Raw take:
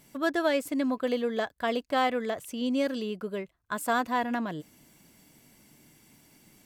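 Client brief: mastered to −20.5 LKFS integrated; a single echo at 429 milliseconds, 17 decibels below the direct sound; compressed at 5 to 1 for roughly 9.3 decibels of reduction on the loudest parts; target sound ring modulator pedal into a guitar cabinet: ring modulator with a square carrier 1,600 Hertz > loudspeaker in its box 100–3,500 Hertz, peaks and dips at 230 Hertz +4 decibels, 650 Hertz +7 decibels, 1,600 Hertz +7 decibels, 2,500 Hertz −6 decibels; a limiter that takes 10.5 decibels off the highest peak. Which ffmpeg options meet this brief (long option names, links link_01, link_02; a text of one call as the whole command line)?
ffmpeg -i in.wav -af "acompressor=threshold=-32dB:ratio=5,alimiter=level_in=8dB:limit=-24dB:level=0:latency=1,volume=-8dB,aecho=1:1:429:0.141,aeval=exprs='val(0)*sgn(sin(2*PI*1600*n/s))':channel_layout=same,highpass=100,equalizer=frequency=230:width_type=q:width=4:gain=4,equalizer=frequency=650:width_type=q:width=4:gain=7,equalizer=frequency=1600:width_type=q:width=4:gain=7,equalizer=frequency=2500:width_type=q:width=4:gain=-6,lowpass=frequency=3500:width=0.5412,lowpass=frequency=3500:width=1.3066,volume=17.5dB" out.wav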